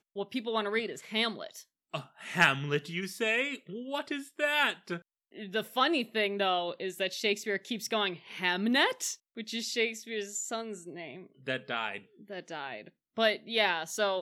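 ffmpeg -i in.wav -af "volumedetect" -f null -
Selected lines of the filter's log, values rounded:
mean_volume: -32.8 dB
max_volume: -8.6 dB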